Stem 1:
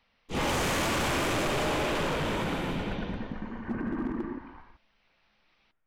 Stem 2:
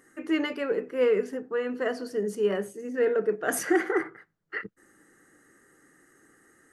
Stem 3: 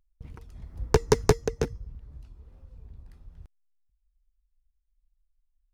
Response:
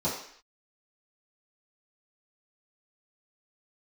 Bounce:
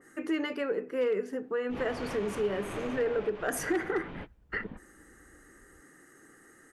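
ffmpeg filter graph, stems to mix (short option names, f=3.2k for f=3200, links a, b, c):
-filter_complex "[0:a]adelay=1400,volume=-7dB[a];[1:a]asoftclip=type=hard:threshold=-16.5dB,adynamicequalizer=threshold=0.00794:dfrequency=2700:dqfactor=0.7:tfrequency=2700:tqfactor=0.7:attack=5:release=100:ratio=0.375:range=2:mode=cutabove:tftype=highshelf,volume=3dB,asplit=2[b][c];[2:a]adelay=2350,volume=-17dB[d];[c]apad=whole_len=320396[e];[a][e]sidechaingate=range=-33dB:threshold=-47dB:ratio=16:detection=peak[f];[f][d]amix=inputs=2:normalize=0,lowpass=2.8k,alimiter=level_in=4.5dB:limit=-24dB:level=0:latency=1:release=189,volume=-4.5dB,volume=0dB[g];[b][g]amix=inputs=2:normalize=0,acompressor=threshold=-33dB:ratio=2"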